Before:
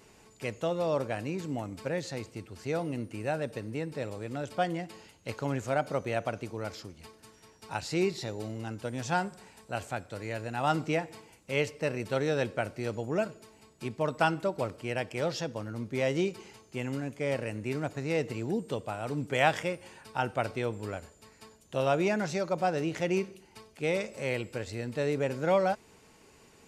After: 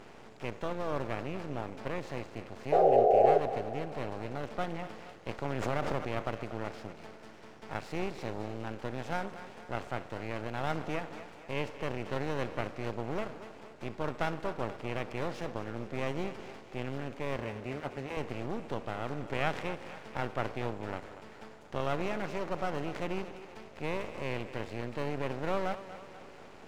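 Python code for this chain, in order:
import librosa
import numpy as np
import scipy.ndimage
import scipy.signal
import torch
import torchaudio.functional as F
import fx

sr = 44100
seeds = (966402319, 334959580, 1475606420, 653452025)

y = fx.bin_compress(x, sr, power=0.6)
y = fx.lowpass(y, sr, hz=2300.0, slope=6)
y = np.maximum(y, 0.0)
y = fx.spec_paint(y, sr, seeds[0], shape='noise', start_s=2.72, length_s=0.66, low_hz=370.0, high_hz=820.0, level_db=-17.0)
y = fx.notch_comb(y, sr, f0_hz=160.0, at=(17.36, 18.17))
y = fx.echo_thinned(y, sr, ms=238, feedback_pct=57, hz=220.0, wet_db=-13)
y = fx.pre_swell(y, sr, db_per_s=27.0, at=(5.44, 6.07))
y = F.gain(torch.from_numpy(y), -5.5).numpy()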